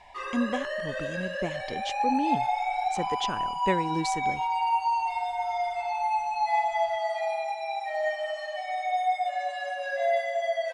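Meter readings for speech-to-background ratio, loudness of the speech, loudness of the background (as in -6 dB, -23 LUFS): -4.0 dB, -33.0 LUFS, -29.0 LUFS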